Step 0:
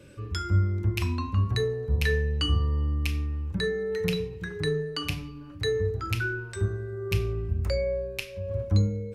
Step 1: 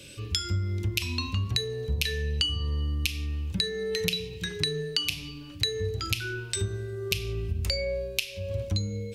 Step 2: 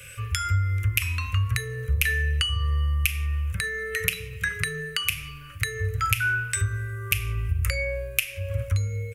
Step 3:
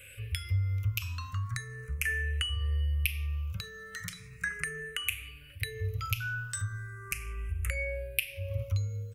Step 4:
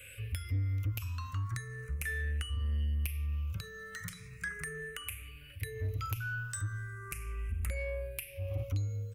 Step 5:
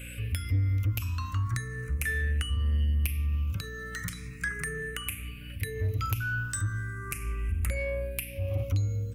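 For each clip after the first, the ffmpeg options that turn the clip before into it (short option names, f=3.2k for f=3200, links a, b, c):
-af "highshelf=f=2.1k:t=q:w=1.5:g=13.5,acompressor=threshold=-24dB:ratio=10"
-af "firequalizer=gain_entry='entry(130,0);entry(190,-18);entry(320,-25);entry(500,-2);entry(770,-24);entry(1200,8);entry(2100,6);entry(4000,-16);entry(6600,-4);entry(10000,5)':delay=0.05:min_phase=1,volume=5dB"
-filter_complex "[0:a]aeval=exprs='val(0)+0.00178*(sin(2*PI*50*n/s)+sin(2*PI*2*50*n/s)/2+sin(2*PI*3*50*n/s)/3+sin(2*PI*4*50*n/s)/4+sin(2*PI*5*50*n/s)/5)':c=same,asplit=2[a][b];[b]afreqshift=0.38[c];[a][c]amix=inputs=2:normalize=1,volume=-5.5dB"
-filter_complex "[0:a]acrossover=split=200|1700|7600[a][b][c][d];[c]acompressor=threshold=-47dB:ratio=6[e];[a][b][e][d]amix=inputs=4:normalize=0,asoftclip=type=tanh:threshold=-27dB"
-af "aeval=exprs='val(0)+0.00398*(sin(2*PI*60*n/s)+sin(2*PI*2*60*n/s)/2+sin(2*PI*3*60*n/s)/3+sin(2*PI*4*60*n/s)/4+sin(2*PI*5*60*n/s)/5)':c=same,volume=6dB"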